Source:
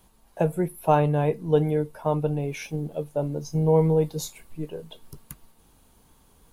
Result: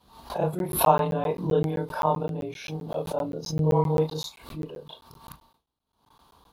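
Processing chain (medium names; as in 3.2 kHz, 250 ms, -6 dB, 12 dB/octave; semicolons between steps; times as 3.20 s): short-time spectra conjugated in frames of 77 ms; graphic EQ 1/2/4/8 kHz +10/-5/+12/-8 dB; rotary cabinet horn 5.5 Hz, later 0.9 Hz, at 0.82 s; high-pass 45 Hz 12 dB/octave; gate with hold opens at -52 dBFS; peaking EQ 1.1 kHz +4.5 dB 1.4 oct; crackling interface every 0.13 s, samples 512, zero, from 0.59 s; swell ahead of each attack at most 100 dB/s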